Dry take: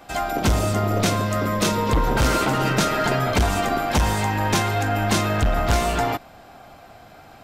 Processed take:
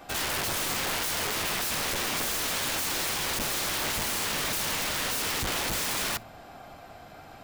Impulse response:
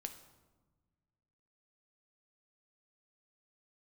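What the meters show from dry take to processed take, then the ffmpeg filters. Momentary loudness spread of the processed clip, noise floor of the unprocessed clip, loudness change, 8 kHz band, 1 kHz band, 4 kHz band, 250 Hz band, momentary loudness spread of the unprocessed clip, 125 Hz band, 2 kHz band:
20 LU, -46 dBFS, -6.0 dB, +1.0 dB, -11.5 dB, 0.0 dB, -15.5 dB, 3 LU, -19.0 dB, -4.5 dB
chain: -filter_complex "[0:a]bandreject=f=111:t=h:w=4,bandreject=f=222:t=h:w=4,aeval=exprs='(mod(15*val(0)+1,2)-1)/15':c=same,asplit=2[a][b];[1:a]atrim=start_sample=2205,atrim=end_sample=3087[c];[b][c]afir=irnorm=-1:irlink=0,volume=-10.5dB[d];[a][d]amix=inputs=2:normalize=0,volume=-3dB"

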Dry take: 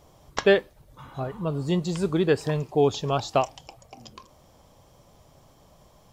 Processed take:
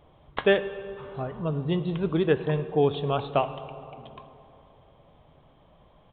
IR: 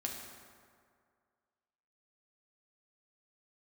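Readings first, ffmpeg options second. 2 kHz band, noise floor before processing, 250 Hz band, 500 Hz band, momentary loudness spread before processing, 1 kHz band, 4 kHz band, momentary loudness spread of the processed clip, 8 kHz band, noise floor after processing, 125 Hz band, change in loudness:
-1.5 dB, -57 dBFS, -1.5 dB, -1.5 dB, 13 LU, -1.5 dB, -3.0 dB, 18 LU, under -35 dB, -58 dBFS, -0.5 dB, -2.0 dB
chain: -filter_complex "[0:a]asplit=2[a][b];[1:a]atrim=start_sample=2205,asetrate=28665,aresample=44100[c];[b][c]afir=irnorm=-1:irlink=0,volume=-10dB[d];[a][d]amix=inputs=2:normalize=0,aresample=8000,aresample=44100,volume=-4dB"

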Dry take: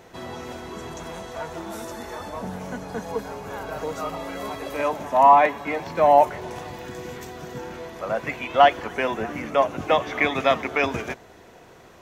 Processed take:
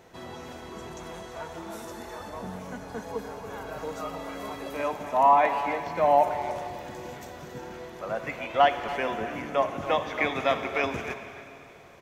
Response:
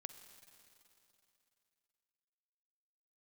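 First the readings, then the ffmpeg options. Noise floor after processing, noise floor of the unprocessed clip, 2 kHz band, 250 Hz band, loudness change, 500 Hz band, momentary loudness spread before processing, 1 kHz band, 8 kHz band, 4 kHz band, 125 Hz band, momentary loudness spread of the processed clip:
-47 dBFS, -49 dBFS, -4.5 dB, -5.0 dB, -5.0 dB, -5.0 dB, 19 LU, -5.0 dB, n/a, -4.5 dB, -5.0 dB, 19 LU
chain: -filter_complex "[0:a]asplit=2[a][b];[b]adelay=280,highpass=300,lowpass=3.4k,asoftclip=type=hard:threshold=-12dB,volume=-11dB[c];[a][c]amix=inputs=2:normalize=0[d];[1:a]atrim=start_sample=2205[e];[d][e]afir=irnorm=-1:irlink=0"

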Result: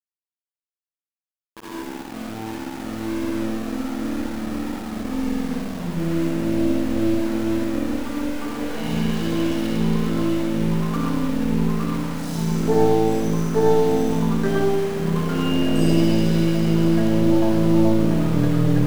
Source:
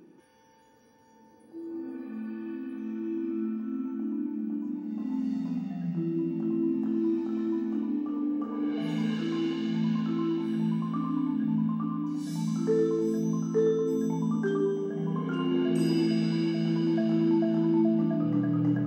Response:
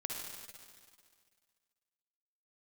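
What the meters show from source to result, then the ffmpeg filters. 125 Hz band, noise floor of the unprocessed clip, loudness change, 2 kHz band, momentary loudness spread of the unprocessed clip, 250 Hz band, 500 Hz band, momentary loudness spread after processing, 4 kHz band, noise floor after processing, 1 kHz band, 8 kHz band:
+10.5 dB, -58 dBFS, +7.0 dB, +12.0 dB, 9 LU, +6.0 dB, +8.5 dB, 10 LU, +11.5 dB, under -85 dBFS, +12.5 dB, n/a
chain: -filter_complex "[0:a]aeval=exprs='val(0)*gte(abs(val(0)),0.0168)':c=same,aeval=exprs='0.188*(cos(1*acos(clip(val(0)/0.188,-1,1)))-cos(1*PI/2))+0.0596*(cos(2*acos(clip(val(0)/0.188,-1,1)))-cos(2*PI/2))+0.00841*(cos(6*acos(clip(val(0)/0.188,-1,1)))-cos(6*PI/2))':c=same[a];[1:a]atrim=start_sample=2205,atrim=end_sample=6174[b];[a][b]afir=irnorm=-1:irlink=0,volume=8dB"

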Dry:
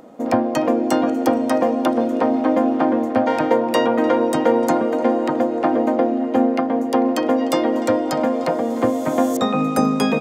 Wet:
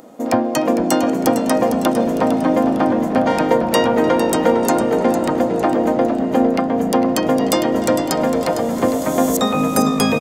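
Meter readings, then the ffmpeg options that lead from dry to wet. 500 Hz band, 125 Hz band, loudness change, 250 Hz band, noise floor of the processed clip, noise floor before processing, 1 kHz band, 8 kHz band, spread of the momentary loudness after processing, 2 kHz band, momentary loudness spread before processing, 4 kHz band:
+1.5 dB, +6.0 dB, +2.0 dB, +1.5 dB, -22 dBFS, -24 dBFS, +1.5 dB, +9.5 dB, 3 LU, +3.0 dB, 3 LU, +5.5 dB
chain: -filter_complex "[0:a]highshelf=f=4.8k:g=11,asplit=6[a][b][c][d][e][f];[b]adelay=455,afreqshift=-56,volume=-9.5dB[g];[c]adelay=910,afreqshift=-112,volume=-16.8dB[h];[d]adelay=1365,afreqshift=-168,volume=-24.2dB[i];[e]adelay=1820,afreqshift=-224,volume=-31.5dB[j];[f]adelay=2275,afreqshift=-280,volume=-38.8dB[k];[a][g][h][i][j][k]amix=inputs=6:normalize=0,volume=1dB"

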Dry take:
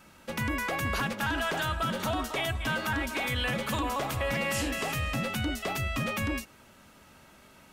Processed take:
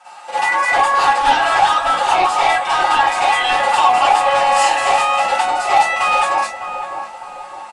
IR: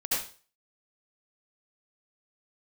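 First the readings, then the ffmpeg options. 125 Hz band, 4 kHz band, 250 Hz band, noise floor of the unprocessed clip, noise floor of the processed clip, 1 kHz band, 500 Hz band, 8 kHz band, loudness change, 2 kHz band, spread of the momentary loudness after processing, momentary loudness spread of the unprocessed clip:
n/a, +13.0 dB, -3.0 dB, -56 dBFS, -35 dBFS, +23.0 dB, +13.0 dB, +12.0 dB, +16.0 dB, +13.5 dB, 12 LU, 3 LU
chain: -filter_complex "[0:a]highpass=f=800:t=q:w=8.5,aecho=1:1:5.6:0.71,flanger=delay=3.4:depth=9.8:regen=54:speed=1.1:shape=triangular,aeval=exprs='0.224*sin(PI/2*2.82*val(0)/0.224)':c=same,asplit=2[a][b];[b]adelay=606,lowpass=f=1.1k:p=1,volume=-7dB,asplit=2[c][d];[d]adelay=606,lowpass=f=1.1k:p=1,volume=0.52,asplit=2[e][f];[f]adelay=606,lowpass=f=1.1k:p=1,volume=0.52,asplit=2[g][h];[h]adelay=606,lowpass=f=1.1k:p=1,volume=0.52,asplit=2[i][j];[j]adelay=606,lowpass=f=1.1k:p=1,volume=0.52,asplit=2[k][l];[l]adelay=606,lowpass=f=1.1k:p=1,volume=0.52[m];[a][c][e][g][i][k][m]amix=inputs=7:normalize=0[n];[1:a]atrim=start_sample=2205,afade=t=out:st=0.2:d=0.01,atrim=end_sample=9261,asetrate=70560,aresample=44100[o];[n][o]afir=irnorm=-1:irlink=0,aresample=22050,aresample=44100"

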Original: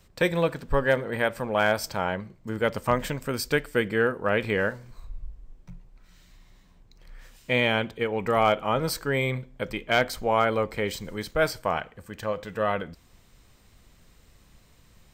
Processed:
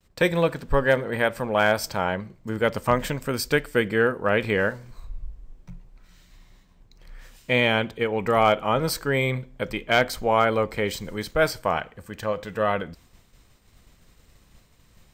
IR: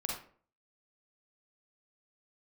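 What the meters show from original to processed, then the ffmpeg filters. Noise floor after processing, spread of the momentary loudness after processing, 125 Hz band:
-58 dBFS, 11 LU, +2.5 dB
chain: -af "agate=range=-33dB:threshold=-52dB:ratio=3:detection=peak,volume=2.5dB"

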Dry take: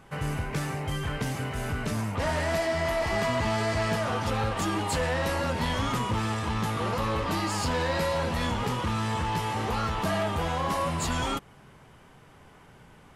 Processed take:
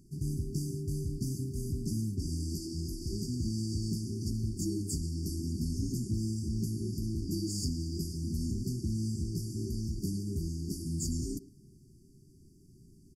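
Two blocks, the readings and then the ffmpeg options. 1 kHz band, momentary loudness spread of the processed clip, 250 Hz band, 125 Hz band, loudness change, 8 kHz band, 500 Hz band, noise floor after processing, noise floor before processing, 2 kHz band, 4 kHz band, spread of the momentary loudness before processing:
under -40 dB, 3 LU, -2.5 dB, -2.5 dB, -6.5 dB, -2.5 dB, -15.5 dB, -59 dBFS, -54 dBFS, under -40 dB, -10.5 dB, 5 LU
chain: -filter_complex "[0:a]afftfilt=real='re*(1-between(b*sr/4096,400,4500))':imag='im*(1-between(b*sr/4096,400,4500))':win_size=4096:overlap=0.75,asplit=2[a][b];[b]adelay=110,highpass=300,lowpass=3.4k,asoftclip=type=hard:threshold=-27.5dB,volume=-13dB[c];[a][c]amix=inputs=2:normalize=0,volume=-2.5dB"

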